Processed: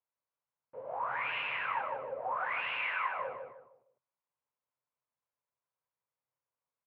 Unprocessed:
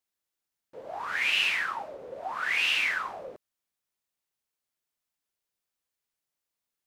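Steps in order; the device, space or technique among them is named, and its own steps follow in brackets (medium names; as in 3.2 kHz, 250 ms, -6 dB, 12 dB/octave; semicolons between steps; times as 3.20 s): 2.78–3.18 s: frequency weighting A; bass cabinet (cabinet simulation 76–2200 Hz, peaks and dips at 130 Hz +9 dB, 190 Hz -7 dB, 340 Hz -9 dB, 540 Hz +7 dB, 1 kHz +9 dB, 1.8 kHz -5 dB); feedback delay 154 ms, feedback 34%, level -4.5 dB; trim -5 dB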